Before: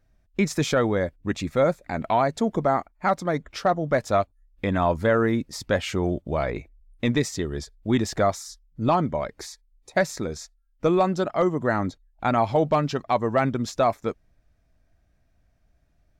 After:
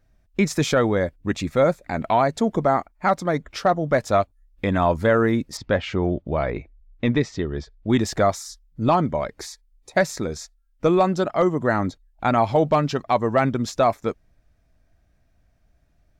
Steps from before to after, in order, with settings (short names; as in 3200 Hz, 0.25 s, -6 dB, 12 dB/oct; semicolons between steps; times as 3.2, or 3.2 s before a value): 5.57–7.9 air absorption 170 m; gain +2.5 dB